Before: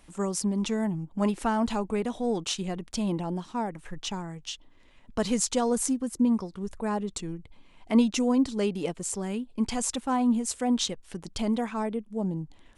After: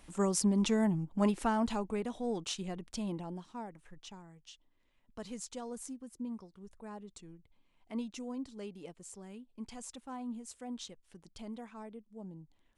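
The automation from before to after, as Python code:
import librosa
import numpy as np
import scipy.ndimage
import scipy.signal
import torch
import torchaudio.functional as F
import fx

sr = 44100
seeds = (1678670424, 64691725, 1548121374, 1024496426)

y = fx.gain(x, sr, db=fx.line((0.91, -1.0), (2.05, -7.5), (2.87, -7.5), (4.2, -17.0)))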